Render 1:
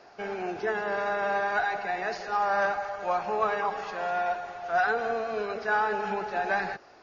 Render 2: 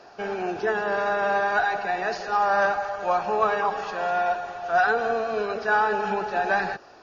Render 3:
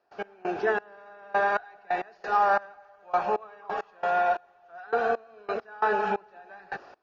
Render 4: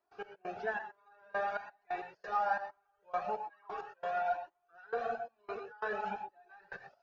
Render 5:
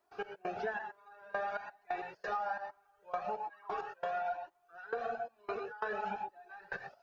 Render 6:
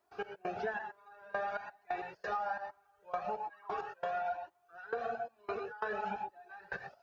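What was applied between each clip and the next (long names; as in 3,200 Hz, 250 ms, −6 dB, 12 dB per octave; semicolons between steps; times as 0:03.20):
notch filter 2,100 Hz, Q 6.9; level +4.5 dB
bass and treble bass −5 dB, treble −9 dB; gate pattern ".x..xxx.....xx.." 134 BPM −24 dB
reverb reduction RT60 0.81 s; reverb whose tail is shaped and stops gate 140 ms rising, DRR 7.5 dB; flanger whose copies keep moving one way rising 1.1 Hz; level −5.5 dB
downward compressor 6 to 1, threshold −40 dBFS, peak gain reduction 12.5 dB; level +6 dB
high-pass filter 52 Hz; low-shelf EQ 86 Hz +9.5 dB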